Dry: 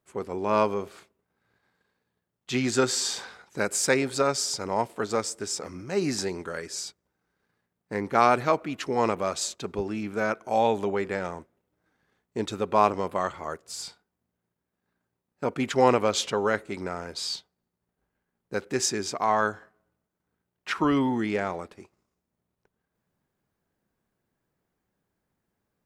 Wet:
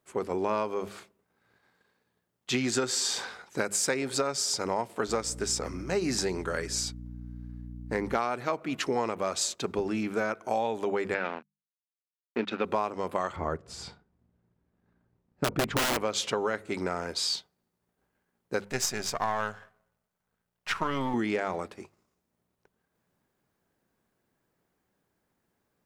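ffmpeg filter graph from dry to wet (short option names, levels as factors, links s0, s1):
-filter_complex "[0:a]asettb=1/sr,asplit=3[s0][s1][s2];[s0]atrim=end=5.084[s3];[s1]atrim=start=5.08:end=8.19,asetpts=PTS-STARTPTS,afade=t=in:d=0.004:c=qsin,afade=t=out:st=3.106:d=0.004:c=qsin,aeval=exprs='val(0)+0.01*(sin(2*PI*60*n/s)+sin(2*PI*2*60*n/s)/2+sin(2*PI*3*60*n/s)/3+sin(2*PI*4*60*n/s)/4+sin(2*PI*5*60*n/s)/5)':c=same,asoftclip=type=hard:threshold=0.376[s4];[s2]atrim=start=8.186[s5];[s3][s4]acrossfade=d=0.004:c1=hsin:c2=qsin[s6];[s6][s5]acrossfade=d=0.004:c1=qsin:c2=hsin,asettb=1/sr,asplit=3[s7][s8][s9];[s7]atrim=end=11.144[s10];[s8]atrim=start=11.14:end=12.65,asetpts=PTS-STARTPTS,afade=t=in:d=0.004:c=qsin,afade=t=out:st=1.506:d=0.004:c=qsin,aeval=exprs='sgn(val(0))*max(abs(val(0))-0.00891,0)':c=same,highpass=210,equalizer=f=230:t=q:w=4:g=7,equalizer=f=1500:t=q:w=4:g=7,equalizer=f=2500:t=q:w=4:g=9,lowpass=f=4300:w=0.5412,lowpass=f=4300:w=1.3066[s11];[s9]atrim=start=12.646[s12];[s10][s11]acrossfade=d=0.004:c1=hsin:c2=qsin[s13];[s13][s12]acrossfade=d=0.004:c1=qsin:c2=hsin,asettb=1/sr,asplit=3[s14][s15][s16];[s14]atrim=end=13.364[s17];[s15]atrim=start=13.36:end=15.97,asetpts=PTS-STARTPTS,afade=t=in:d=0.004:c=qsin,afade=t=out:st=2.606:d=0.004:c=qsin,aemphasis=mode=reproduction:type=riaa,aeval=exprs='(mod(5.96*val(0)+1,2)-1)/5.96':c=same[s18];[s16]atrim=start=15.966[s19];[s17][s18]acrossfade=d=0.004:c1=hsin:c2=qsin[s20];[s20][s19]acrossfade=d=0.004:c1=qsin:c2=hsin,asettb=1/sr,asplit=3[s21][s22][s23];[s21]atrim=end=18.644[s24];[s22]atrim=start=18.64:end=21.14,asetpts=PTS-STARTPTS,afade=t=in:d=0.004:c=qsin,afade=t=out:st=2.496:d=0.004:c=qsin,aeval=exprs='if(lt(val(0),0),0.447*val(0),val(0))':c=same,equalizer=f=320:w=2.6:g=-12[s25];[s23]atrim=start=21.136[s26];[s24][s25]acrossfade=d=0.004:c1=hsin:c2=qsin[s27];[s27][s26]acrossfade=d=0.004:c1=qsin:c2=hsin,lowshelf=f=130:g=-4.5,bandreject=f=50:t=h:w=6,bandreject=f=100:t=h:w=6,bandreject=f=150:t=h:w=6,bandreject=f=200:t=h:w=6,acompressor=threshold=0.0398:ratio=10,volume=1.5"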